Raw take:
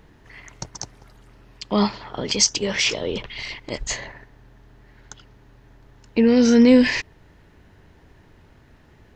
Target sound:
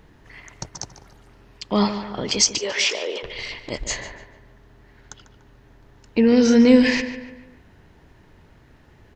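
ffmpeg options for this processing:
-filter_complex "[0:a]asettb=1/sr,asplit=3[s0][s1][s2];[s0]atrim=end=2.594[s3];[s1]atrim=start=2.59:end=3.23,asetpts=PTS-STARTPTS,afade=t=in:d=0.004:c=qsin,afade=t=out:st=0.636:d=0.004:c=qsin,highpass=f=390:w=0.5412,highpass=f=390:w=1.3066[s4];[s2]atrim=start=3.226[s5];[s3][s4]acrossfade=d=0.004:c1=hsin:c2=qsin[s6];[s6][s5]acrossfade=d=0.004:c1=qsin:c2=hsin,asplit=2[s7][s8];[s8]adelay=146,lowpass=f=3000:p=1,volume=0.299,asplit=2[s9][s10];[s10]adelay=146,lowpass=f=3000:p=1,volume=0.46,asplit=2[s11][s12];[s12]adelay=146,lowpass=f=3000:p=1,volume=0.46,asplit=2[s13][s14];[s14]adelay=146,lowpass=f=3000:p=1,volume=0.46,asplit=2[s15][s16];[s16]adelay=146,lowpass=f=3000:p=1,volume=0.46[s17];[s9][s11][s13][s15][s17]amix=inputs=5:normalize=0[s18];[s7][s18]amix=inputs=2:normalize=0"

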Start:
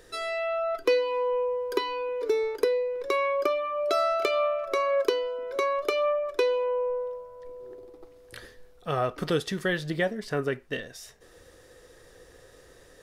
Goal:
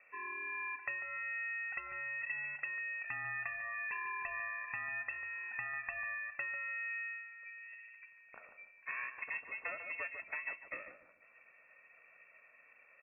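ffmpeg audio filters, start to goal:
-filter_complex "[0:a]aeval=exprs='val(0)*sin(2*PI*350*n/s)':c=same,asplit=2[s0][s1];[s1]aeval=exprs='sgn(val(0))*max(abs(val(0))-0.0126,0)':c=same,volume=0.251[s2];[s0][s2]amix=inputs=2:normalize=0,aecho=1:1:2.4:0.3,acompressor=threshold=0.0316:ratio=6,lowpass=f=2300:t=q:w=0.5098,lowpass=f=2300:t=q:w=0.6013,lowpass=f=2300:t=q:w=0.9,lowpass=f=2300:t=q:w=2.563,afreqshift=-2700,asplit=2[s3][s4];[s4]adelay=146,lowpass=f=890:p=1,volume=0.501,asplit=2[s5][s6];[s6]adelay=146,lowpass=f=890:p=1,volume=0.33,asplit=2[s7][s8];[s8]adelay=146,lowpass=f=890:p=1,volume=0.33,asplit=2[s9][s10];[s10]adelay=146,lowpass=f=890:p=1,volume=0.33[s11];[s5][s7][s9][s11]amix=inputs=4:normalize=0[s12];[s3][s12]amix=inputs=2:normalize=0,volume=0.422"

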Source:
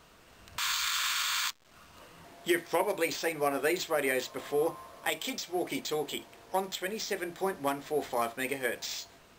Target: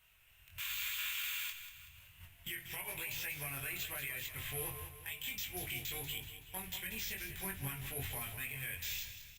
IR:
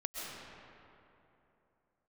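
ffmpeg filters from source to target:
-af "bandreject=f=50:t=h:w=6,bandreject=f=100:t=h:w=6,bandreject=f=150:t=h:w=6,asubboost=boost=8.5:cutoff=180,bandreject=f=1200:w=11,agate=range=0.355:threshold=0.00562:ratio=16:detection=peak,firequalizer=gain_entry='entry(120,0);entry(170,-15);entry(260,-20);entry(600,-13);entry(2600,8);entry(4500,-8);entry(12000,12)':delay=0.05:min_phase=1,acompressor=threshold=0.0224:ratio=10,alimiter=level_in=1.58:limit=0.0631:level=0:latency=1:release=24,volume=0.631,flanger=delay=20:depth=3.1:speed=0.95,volume=53.1,asoftclip=hard,volume=0.0188,aecho=1:1:189|378|567|756|945:0.299|0.14|0.0659|0.031|0.0146,volume=1.33" -ar 48000 -c:a libopus -b:a 64k

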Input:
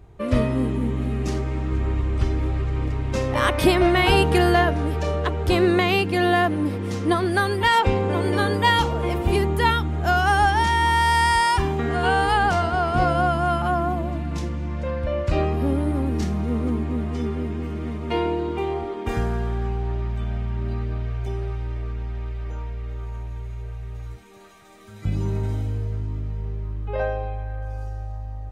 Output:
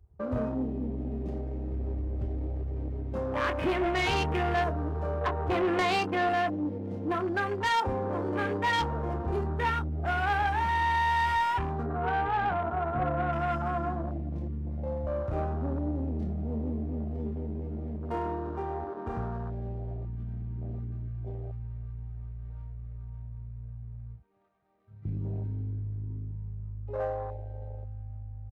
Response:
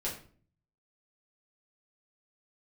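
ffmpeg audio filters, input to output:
-filter_complex "[0:a]highpass=f=49:w=0.5412,highpass=f=49:w=1.3066,adynamicsmooth=sensitivity=6.5:basefreq=770,asettb=1/sr,asplit=3[s0][s1][s2];[s0]atrim=end=5.214[s3];[s1]atrim=start=5.21:end=6.29,asetpts=PTS-STARTPTS,afade=t=in:d=0.004:c=qsin,afade=t=out:st=1.076:d=0.004:c=qsin,equalizer=f=930:t=o:w=1.7:g=8[s4];[s2]atrim=start=6.286[s5];[s3][s4]acrossfade=d=0.004:c1=hsin:c2=qsin[s6];[s6][s5]acrossfade=d=0.004:c1=qsin:c2=hsin,asettb=1/sr,asplit=3[s7][s8][s9];[s7]atrim=end=11.834[s10];[s8]atrim=start=11.83:end=13.33,asetpts=PTS-STARTPTS,afade=t=in:d=0.004:c=qsin,afade=t=out:st=1.496:d=0.004:c=qsin,lowpass=1500[s11];[s9]atrim=start=13.326[s12];[s10][s11]acrossfade=d=0.004:c1=hsin:c2=qsin[s13];[s13][s12]acrossfade=d=0.004:c1=qsin:c2=hsin,asplit=2[s14][s15];[s15]adelay=27,volume=0.398[s16];[s14][s16]amix=inputs=2:normalize=0,asplit=2[s17][s18];[s18]acompressor=threshold=0.0316:ratio=8,volume=0.708[s19];[s17][s19]amix=inputs=2:normalize=0,afwtdn=0.0562,asoftclip=type=tanh:threshold=0.224,lowshelf=f=460:g=-3.5,volume=0.447"

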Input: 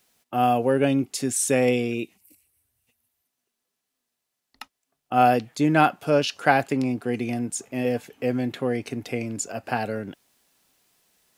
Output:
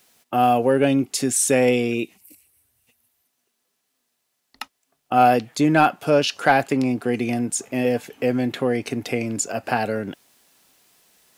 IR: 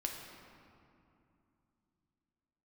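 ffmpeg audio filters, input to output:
-filter_complex "[0:a]lowshelf=f=120:g=-5.5,asplit=2[s0][s1];[s1]acompressor=threshold=0.0282:ratio=6,volume=0.75[s2];[s0][s2]amix=inputs=2:normalize=0,asoftclip=type=tanh:threshold=0.531,volume=1.33"

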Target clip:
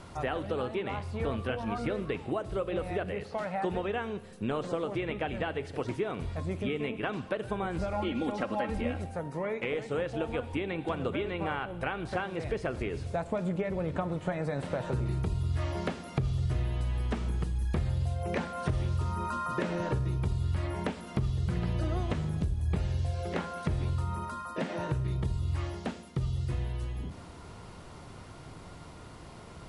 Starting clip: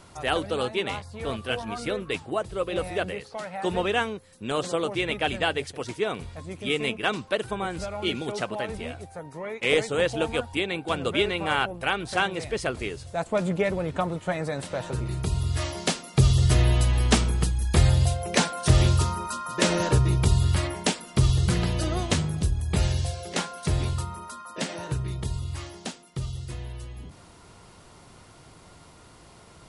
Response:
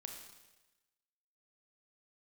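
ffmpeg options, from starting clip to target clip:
-filter_complex "[0:a]aemphasis=mode=reproduction:type=cd,acompressor=threshold=0.0282:ratio=12,asettb=1/sr,asplit=3[s0][s1][s2];[s0]atrim=end=7.924[s3];[s1]atrim=start=7.92:end=9.04,asetpts=PTS-STARTPTS,afade=t=in:d=0.004:c=qsin,afade=t=out:st=1.116:d=0.004:c=qsin,aecho=1:1:3.7:0.67,atrim=end_sample=49392[s4];[s2]atrim=start=9.036[s5];[s3][s4]acrossfade=d=0.004:c1=hsin:c2=qsin[s6];[s6][s5]acrossfade=d=0.004:c1=qsin:c2=hsin,asplit=2[s7][s8];[1:a]atrim=start_sample=2205,lowshelf=f=390:g=9.5,highshelf=f=8700:g=10[s9];[s8][s9]afir=irnorm=-1:irlink=0,volume=0.473[s10];[s7][s10]amix=inputs=2:normalize=0,acrossover=split=2600[s11][s12];[s12]acompressor=threshold=0.00251:ratio=4:attack=1:release=60[s13];[s11][s13]amix=inputs=2:normalize=0"

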